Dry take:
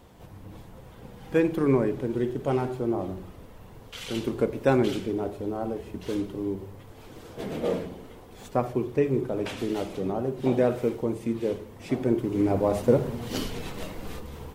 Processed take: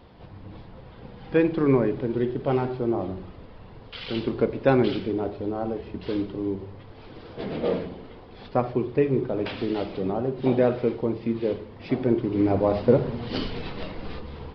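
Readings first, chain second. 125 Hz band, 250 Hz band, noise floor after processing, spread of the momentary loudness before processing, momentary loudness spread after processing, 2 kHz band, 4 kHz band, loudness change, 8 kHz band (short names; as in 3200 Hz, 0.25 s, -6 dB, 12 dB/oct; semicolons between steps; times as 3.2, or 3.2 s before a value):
+2.0 dB, +2.0 dB, -46 dBFS, 22 LU, 22 LU, +2.0 dB, +2.0 dB, +2.0 dB, under -20 dB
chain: downsampling 11025 Hz; gain +2 dB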